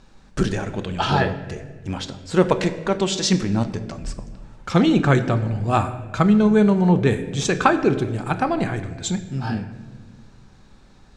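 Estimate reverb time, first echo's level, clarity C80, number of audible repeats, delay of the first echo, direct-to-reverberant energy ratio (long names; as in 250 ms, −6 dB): 1.6 s, no echo audible, 13.0 dB, no echo audible, no echo audible, 9.0 dB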